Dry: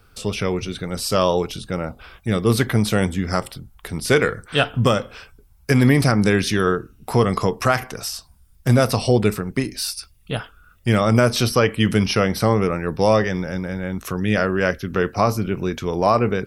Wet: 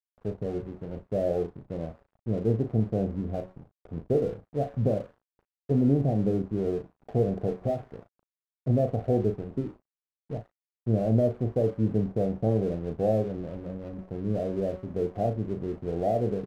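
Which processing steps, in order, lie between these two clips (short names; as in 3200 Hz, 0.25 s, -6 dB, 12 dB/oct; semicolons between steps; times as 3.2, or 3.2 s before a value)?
switching spikes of -12.5 dBFS; steep low-pass 760 Hz 96 dB/oct; de-hum 186 Hz, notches 3; crossover distortion -40.5 dBFS; doubler 36 ms -9 dB; gain -7.5 dB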